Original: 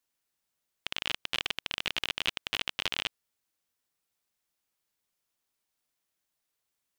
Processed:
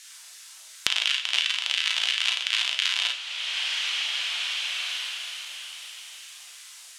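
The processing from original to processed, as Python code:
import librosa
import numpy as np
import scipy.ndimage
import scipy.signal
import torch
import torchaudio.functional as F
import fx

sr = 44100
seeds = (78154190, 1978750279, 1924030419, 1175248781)

y = fx.weighting(x, sr, curve='ITU-R 468')
y = fx.filter_lfo_highpass(y, sr, shape='saw_down', hz=2.9, low_hz=470.0, high_hz=1900.0, q=1.6)
y = fx.room_early_taps(y, sr, ms=(36, 52), db=(-3.5, -7.5))
y = fx.rev_double_slope(y, sr, seeds[0], early_s=0.31, late_s=4.8, knee_db=-19, drr_db=3.5)
y = fx.band_squash(y, sr, depth_pct=100)
y = y * 10.0 ** (-4.0 / 20.0)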